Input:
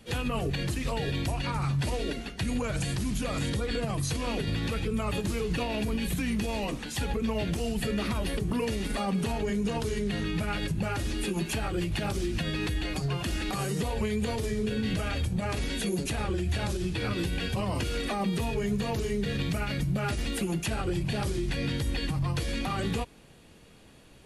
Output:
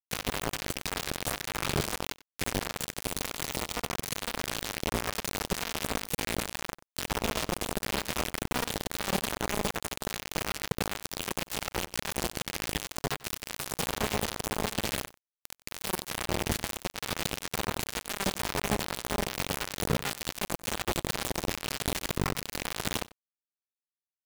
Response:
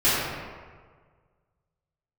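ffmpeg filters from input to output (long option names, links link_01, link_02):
-filter_complex "[0:a]asettb=1/sr,asplit=3[link_01][link_02][link_03];[link_01]atrim=end=9.814[link_04];[link_02]atrim=start=9.81:end=10.3,asetpts=PTS-STARTPTS,afade=type=in:duration=0.004:curve=qsin,afade=type=out:start_time=0.486:duration=0.004:curve=qsin,highpass=50[link_05];[link_03]atrim=start=10.296[link_06];[link_04][link_05]acrossfade=duration=0.004:curve1=hsin:curve2=qsin[link_07];[link_07][link_06]acrossfade=duration=0.004:curve1=qsin:curve2=hsin,asplit=3[link_08][link_09][link_10];[link_08]afade=type=out:start_time=15.05:duration=0.02[link_11];[link_09]lowshelf=frequency=190:gain=-7.5,afade=type=in:start_time=15.05:duration=0.02,afade=type=out:start_time=15.65:duration=0.02[link_12];[link_10]afade=type=in:start_time=15.65:duration=0.02[link_13];[link_11][link_12][link_13]amix=inputs=3:normalize=0,acrusher=bits=3:mix=0:aa=0.000001,asettb=1/sr,asplit=3[link_14][link_15][link_16];[link_14]atrim=end=3.254[link_17];[link_15]atrim=start=3.25:end=3.95,asetpts=PTS-STARTPTS,afade=type=in:duration=0.004:curve=qsin,afade=type=out:start_time=0.696:duration=0.004:curve=qsin,bandreject=frequency=1600:width=7.1[link_18];[link_16]atrim=start=3.946[link_19];[link_17][link_18]acrossfade=duration=0.004:curve1=hsin:curve2=qsin[link_20];[link_20][link_19]acrossfade=duration=0.004:curve1=qsin:curve2=hsin,asplit=2[link_21][link_22];[link_22]adelay=93.29,volume=-20dB,highshelf=frequency=4000:gain=-2.1[link_23];[link_21][link_23]amix=inputs=2:normalize=0,volume=-1dB"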